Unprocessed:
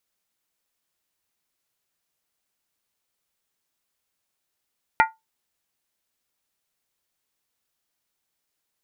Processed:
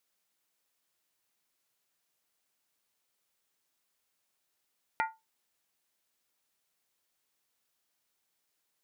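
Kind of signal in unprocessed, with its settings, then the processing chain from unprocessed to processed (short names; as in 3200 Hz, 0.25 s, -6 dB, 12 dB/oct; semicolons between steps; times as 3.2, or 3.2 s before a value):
skin hit, lowest mode 890 Hz, decay 0.19 s, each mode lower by 3 dB, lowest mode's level -11 dB
low shelf 120 Hz -8.5 dB; limiter -15.5 dBFS; compressor, threshold -29 dBFS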